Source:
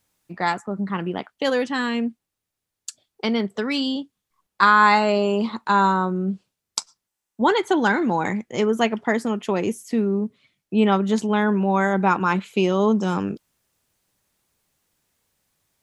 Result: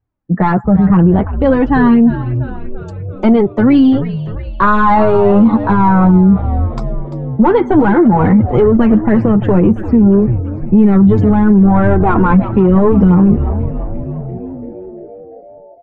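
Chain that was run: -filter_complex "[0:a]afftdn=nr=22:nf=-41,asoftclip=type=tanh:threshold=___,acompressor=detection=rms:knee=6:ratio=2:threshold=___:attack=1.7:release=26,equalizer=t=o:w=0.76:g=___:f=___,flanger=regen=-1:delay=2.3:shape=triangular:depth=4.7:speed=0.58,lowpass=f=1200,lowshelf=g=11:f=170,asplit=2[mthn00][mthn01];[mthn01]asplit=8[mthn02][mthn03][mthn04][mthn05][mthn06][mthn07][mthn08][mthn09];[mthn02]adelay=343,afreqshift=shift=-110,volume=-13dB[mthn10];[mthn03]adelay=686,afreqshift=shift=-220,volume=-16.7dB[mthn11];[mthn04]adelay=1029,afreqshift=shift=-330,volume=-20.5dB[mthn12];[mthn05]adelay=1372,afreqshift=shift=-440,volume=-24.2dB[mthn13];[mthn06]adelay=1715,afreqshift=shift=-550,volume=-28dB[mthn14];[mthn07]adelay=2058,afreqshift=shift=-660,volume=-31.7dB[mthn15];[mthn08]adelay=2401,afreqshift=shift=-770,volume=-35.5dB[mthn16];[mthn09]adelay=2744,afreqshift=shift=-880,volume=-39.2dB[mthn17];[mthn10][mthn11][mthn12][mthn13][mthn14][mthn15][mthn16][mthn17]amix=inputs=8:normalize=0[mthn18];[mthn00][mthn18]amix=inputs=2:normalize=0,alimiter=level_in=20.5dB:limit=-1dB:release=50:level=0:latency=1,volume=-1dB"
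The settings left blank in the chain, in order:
-15dB, -26dB, 8, 130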